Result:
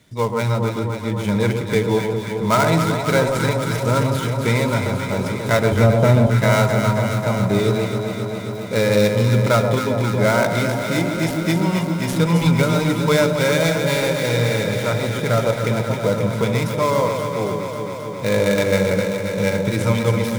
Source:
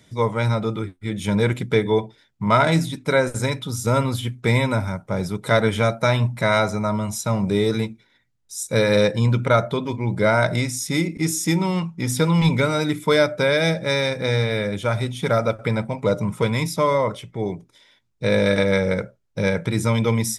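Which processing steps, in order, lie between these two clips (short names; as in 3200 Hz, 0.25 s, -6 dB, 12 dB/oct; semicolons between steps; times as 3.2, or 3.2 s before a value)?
switching dead time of 0.085 ms; 5.72–6.27 tilt shelf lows +8.5 dB, about 860 Hz; echo with dull and thin repeats by turns 0.134 s, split 1100 Hz, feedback 88%, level -5 dB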